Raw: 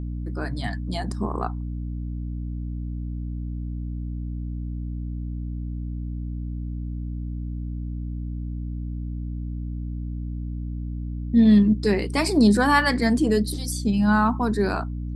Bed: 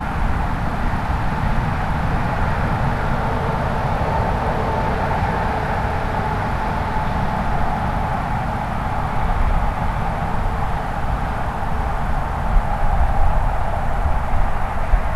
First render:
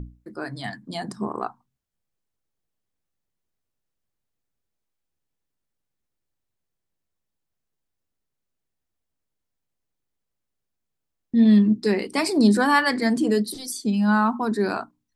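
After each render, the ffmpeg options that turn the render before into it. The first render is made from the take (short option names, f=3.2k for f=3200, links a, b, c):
-af "bandreject=f=60:t=h:w=6,bandreject=f=120:t=h:w=6,bandreject=f=180:t=h:w=6,bandreject=f=240:t=h:w=6,bandreject=f=300:t=h:w=6"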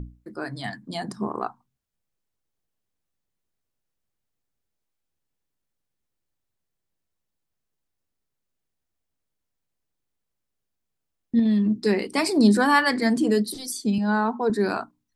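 -filter_complex "[0:a]asettb=1/sr,asplit=3[a][b][c];[a]atrim=end=1.064[d];[b]atrim=start=1.06:end=1.46,asetpts=PTS-STARTPTS,afade=t=in:d=0.004:c=qsin,afade=t=out:st=0.396:d=0.004:c=qsin,bandreject=f=8k:w=12[e];[c]atrim=start=1.456[f];[d][e]acrossfade=d=0.004:c1=hsin:c2=qsin[g];[g][f]acrossfade=d=0.004:c1=qsin:c2=hsin,asettb=1/sr,asplit=3[h][i][j];[h]atrim=end=11.394[k];[i]atrim=start=11.39:end=11.81,asetpts=PTS-STARTPTS,afade=t=in:d=0.004:c=qsin,afade=t=out:st=0.416:d=0.004:c=qsin,acompressor=threshold=-18dB:ratio=5:attack=3.2:release=140:knee=1:detection=peak[l];[j]atrim=start=11.806[m];[k][l]acrossfade=d=0.004:c1=hsin:c2=qsin[n];[n][m]acrossfade=d=0.004:c1=qsin:c2=hsin,asettb=1/sr,asplit=3[o][p][q];[o]atrim=end=13.984[r];[p]atrim=start=13.98:end=14.5,asetpts=PTS-STARTPTS,afade=t=in:d=0.004:c=qsin,afade=t=out:st=0.516:d=0.004:c=qsin,highpass=220,equalizer=f=300:t=q:w=4:g=-8,equalizer=f=450:t=q:w=4:g=10,equalizer=f=1.2k:t=q:w=4:g=-9,equalizer=f=2.8k:t=q:w=4:g=-8,equalizer=f=5.3k:t=q:w=4:g=-5,lowpass=f=7k:w=0.5412,lowpass=f=7k:w=1.3066[s];[q]atrim=start=14.496[t];[r][s]acrossfade=d=0.004:c1=hsin:c2=qsin[u];[u][t]acrossfade=d=0.004:c1=qsin:c2=hsin"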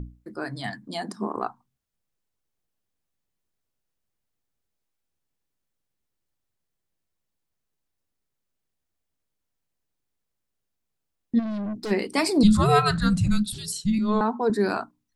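-filter_complex "[0:a]asettb=1/sr,asplit=3[a][b][c];[a]atrim=end=0.884[d];[b]atrim=start=0.88:end=1.36,asetpts=PTS-STARTPTS,afade=t=in:d=0.004:c=qsin,afade=t=out:st=0.476:d=0.004:c=qsin,highpass=f=190:w=0.5412,highpass=f=190:w=1.3066[e];[c]atrim=start=1.356[f];[d][e]acrossfade=d=0.004:c1=hsin:c2=qsin[g];[g][f]acrossfade=d=0.004:c1=qsin:c2=hsin,asplit=3[h][i][j];[h]afade=t=out:st=11.38:d=0.02[k];[i]aeval=exprs='(tanh(25.1*val(0)+0.2)-tanh(0.2))/25.1':c=same,afade=t=in:st=11.38:d=0.02,afade=t=out:st=11.9:d=0.02[l];[j]afade=t=in:st=11.9:d=0.02[m];[k][l][m]amix=inputs=3:normalize=0,asettb=1/sr,asplit=3[n][o][p];[n]atrim=end=12.434[q];[o]atrim=start=12.43:end=14.21,asetpts=PTS-STARTPTS,afade=t=in:d=0.004:c=qsin,afade=t=out:st=1.776:d=0.004:c=qsin,afreqshift=-420[r];[p]atrim=start=14.206[s];[q][r]acrossfade=d=0.004:c1=hsin:c2=qsin[t];[t][s]acrossfade=d=0.004:c1=qsin:c2=hsin"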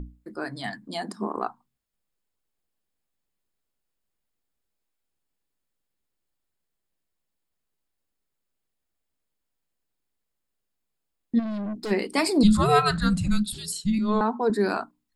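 -af "equalizer=f=110:t=o:w=0.61:g=-9,bandreject=f=5.9k:w=8.2"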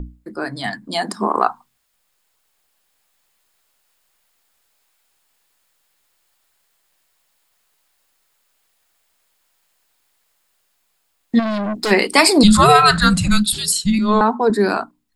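-filter_complex "[0:a]acrossover=split=610[a][b];[b]dynaudnorm=f=160:g=17:m=15dB[c];[a][c]amix=inputs=2:normalize=0,alimiter=level_in=7dB:limit=-1dB:release=50:level=0:latency=1"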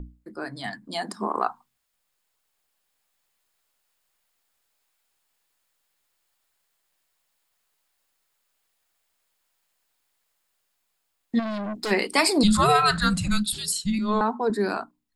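-af "volume=-8.5dB"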